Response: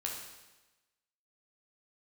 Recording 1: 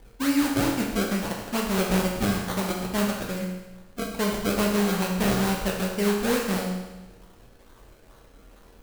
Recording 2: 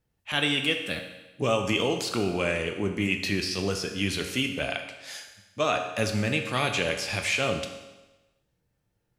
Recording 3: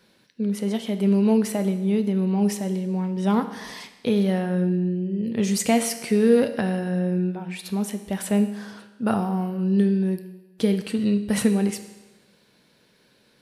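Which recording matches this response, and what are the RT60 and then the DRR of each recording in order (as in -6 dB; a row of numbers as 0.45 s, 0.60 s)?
1; 1.1 s, 1.1 s, 1.1 s; -1.5 dB, 4.0 dB, 8.0 dB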